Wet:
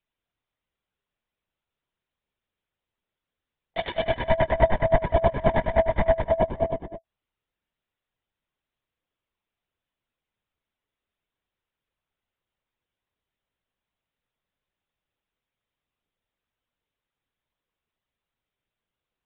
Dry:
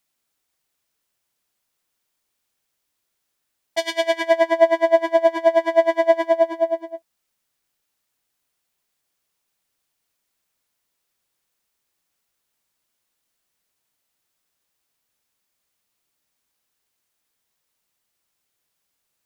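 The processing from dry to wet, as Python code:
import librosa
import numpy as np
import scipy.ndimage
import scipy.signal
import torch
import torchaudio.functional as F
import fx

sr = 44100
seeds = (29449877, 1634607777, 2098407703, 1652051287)

y = fx.lpc_vocoder(x, sr, seeds[0], excitation='whisper', order=16)
y = fx.low_shelf(y, sr, hz=470.0, db=6.5)
y = y * 10.0 ** (-7.0 / 20.0)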